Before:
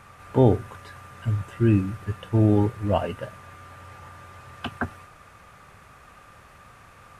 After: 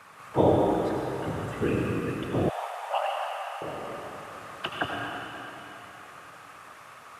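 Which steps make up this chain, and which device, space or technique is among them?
whispering ghost (whisperiser; HPF 350 Hz 12 dB/oct; reverb RT60 3.6 s, pre-delay 71 ms, DRR -1 dB); 2.49–3.62 steep high-pass 660 Hz 48 dB/oct; resonant low shelf 160 Hz +9 dB, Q 1.5

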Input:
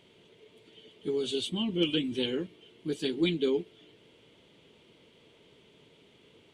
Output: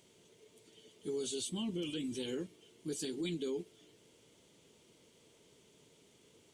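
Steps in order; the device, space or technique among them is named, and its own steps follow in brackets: over-bright horn tweeter (resonant high shelf 4600 Hz +12 dB, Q 1.5; limiter -24.5 dBFS, peak gain reduction 9.5 dB); gain -5.5 dB

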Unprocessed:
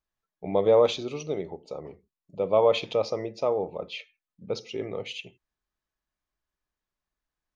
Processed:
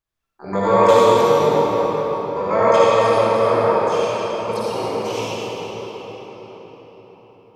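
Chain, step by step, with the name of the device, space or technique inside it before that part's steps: 1.65–3.46 LPF 2800 Hz -> 4400 Hz 12 dB/oct; shimmer-style reverb (harmoniser +12 st -5 dB; reverb RT60 5.5 s, pre-delay 48 ms, DRR -9.5 dB); gain -1 dB

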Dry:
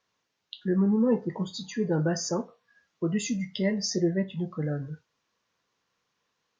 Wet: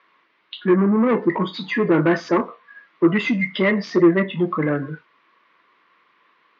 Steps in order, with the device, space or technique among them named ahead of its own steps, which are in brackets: overdrive pedal into a guitar cabinet (overdrive pedal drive 22 dB, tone 1700 Hz, clips at -13 dBFS; speaker cabinet 100–3800 Hz, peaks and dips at 110 Hz -9 dB, 330 Hz +7 dB, 490 Hz -4 dB, 780 Hz -7 dB, 1100 Hz +7 dB, 2100 Hz +7 dB); gain +4 dB

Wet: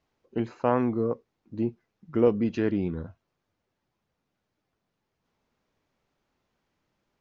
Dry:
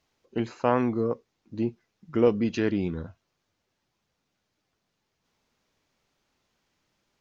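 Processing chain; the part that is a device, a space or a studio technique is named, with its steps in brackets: through cloth (high shelf 2700 Hz -11 dB)

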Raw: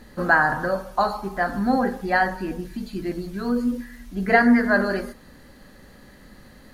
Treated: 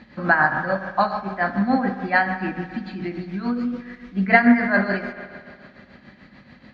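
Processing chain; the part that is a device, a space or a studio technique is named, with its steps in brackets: combo amplifier with spring reverb and tremolo (spring tank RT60 2.2 s, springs 57 ms, chirp 25 ms, DRR 8 dB; tremolo 6.9 Hz, depth 59%; speaker cabinet 85–4400 Hz, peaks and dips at 200 Hz +4 dB, 440 Hz -9 dB, 2300 Hz +8 dB); gain +2.5 dB

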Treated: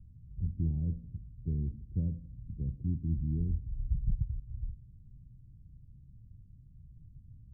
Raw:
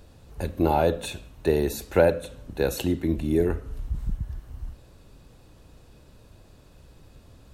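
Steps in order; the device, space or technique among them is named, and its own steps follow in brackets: the neighbour's flat through the wall (LPF 180 Hz 24 dB/oct; bell 120 Hz +5 dB 0.62 oct); gain -2.5 dB

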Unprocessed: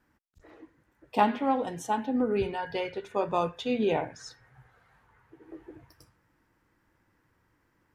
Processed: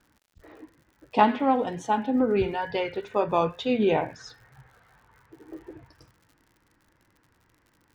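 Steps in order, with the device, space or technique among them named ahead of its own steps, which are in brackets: lo-fi chain (LPF 5000 Hz 12 dB/oct; wow and flutter; crackle 86/s -52 dBFS); gain +4 dB

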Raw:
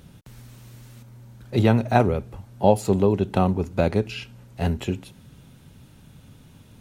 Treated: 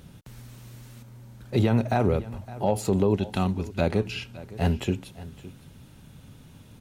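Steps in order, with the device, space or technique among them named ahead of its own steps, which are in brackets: 3.16–3.81 graphic EQ 125/500/1000/4000 Hz -6/-11/-4/+4 dB; clipper into limiter (hard clip -4 dBFS, distortion -36 dB; limiter -12 dBFS, peak gain reduction 8 dB); echo 0.563 s -18 dB

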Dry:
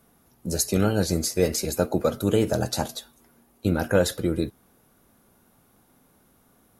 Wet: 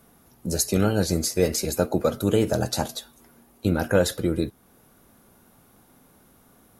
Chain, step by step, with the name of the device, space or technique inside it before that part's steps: parallel compression (in parallel at -4 dB: compressor, threshold -40 dBFS, peak gain reduction 23 dB)

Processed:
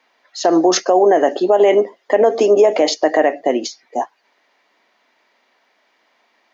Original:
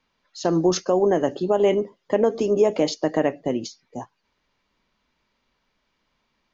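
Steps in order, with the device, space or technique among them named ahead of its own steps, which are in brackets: laptop speaker (HPF 280 Hz 24 dB/oct; bell 710 Hz +9.5 dB 0.5 oct; bell 1900 Hz +7.5 dB 0.47 oct; limiter -13 dBFS, peak gain reduction 8.5 dB); gain +9 dB

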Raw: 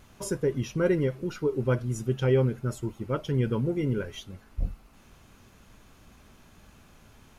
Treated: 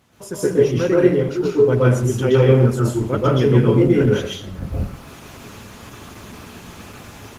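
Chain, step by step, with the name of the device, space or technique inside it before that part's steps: far-field microphone of a smart speaker (reverb RT60 0.50 s, pre-delay 0.118 s, DRR -5.5 dB; HPF 110 Hz 12 dB/oct; AGC gain up to 15.5 dB; gain -1 dB; Opus 16 kbps 48000 Hz)

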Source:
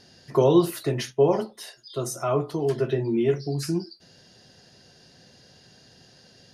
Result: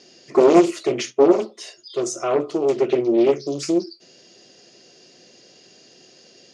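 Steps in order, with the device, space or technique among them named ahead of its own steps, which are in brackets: full-range speaker at full volume (Doppler distortion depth 0.97 ms; speaker cabinet 290–7400 Hz, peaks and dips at 350 Hz +7 dB, 870 Hz -8 dB, 1600 Hz -9 dB, 2400 Hz +4 dB, 3900 Hz -4 dB, 6900 Hz +6 dB); gain +5 dB

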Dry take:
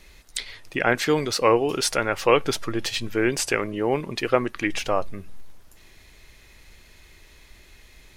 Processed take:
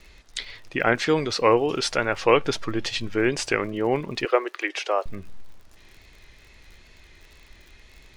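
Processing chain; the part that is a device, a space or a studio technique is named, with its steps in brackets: lo-fi chain (LPF 5900 Hz 12 dB/oct; wow and flutter; crackle 50/s -40 dBFS); 4.25–5.06 steep high-pass 350 Hz 48 dB/oct

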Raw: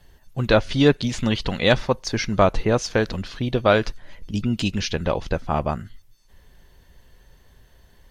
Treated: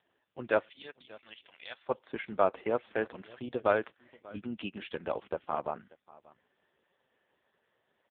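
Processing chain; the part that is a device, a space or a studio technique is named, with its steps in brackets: 0.69–1.86 pre-emphasis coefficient 0.97; satellite phone (BPF 330–3100 Hz; echo 0.587 s -22.5 dB; gain -7.5 dB; AMR-NB 4.75 kbps 8000 Hz)

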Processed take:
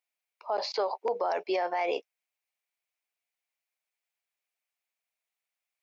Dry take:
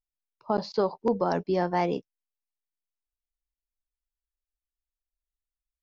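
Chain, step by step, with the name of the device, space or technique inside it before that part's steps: laptop speaker (HPF 450 Hz 24 dB/oct; bell 700 Hz +6 dB 0.58 oct; bell 2300 Hz +11.5 dB 0.57 oct; limiter -25.5 dBFS, peak gain reduction 14 dB); gain +4.5 dB

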